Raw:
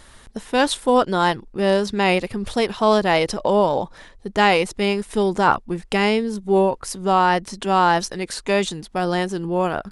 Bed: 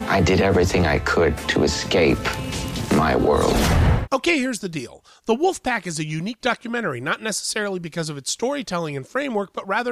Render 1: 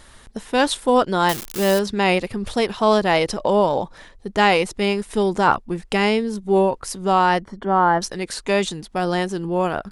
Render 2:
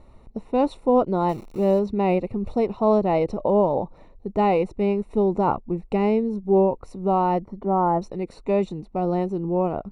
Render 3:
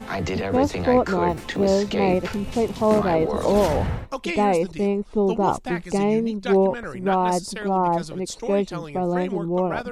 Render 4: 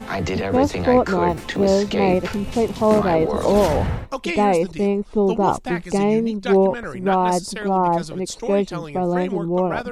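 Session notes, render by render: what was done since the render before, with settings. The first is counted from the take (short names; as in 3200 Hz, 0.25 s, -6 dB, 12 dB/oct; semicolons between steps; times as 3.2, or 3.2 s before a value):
1.29–1.79 switching spikes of -13.5 dBFS; 7.43–8.02 polynomial smoothing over 41 samples
running mean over 27 samples
add bed -9 dB
gain +2.5 dB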